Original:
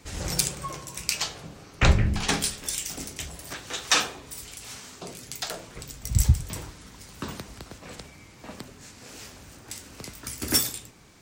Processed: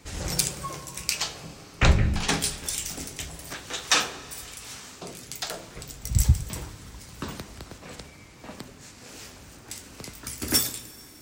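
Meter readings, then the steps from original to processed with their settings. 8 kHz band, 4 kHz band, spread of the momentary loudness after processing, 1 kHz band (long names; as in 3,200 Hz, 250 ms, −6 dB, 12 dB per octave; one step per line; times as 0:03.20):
0.0 dB, 0.0 dB, 20 LU, 0.0 dB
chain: dense smooth reverb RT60 4.1 s, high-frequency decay 0.85×, DRR 16 dB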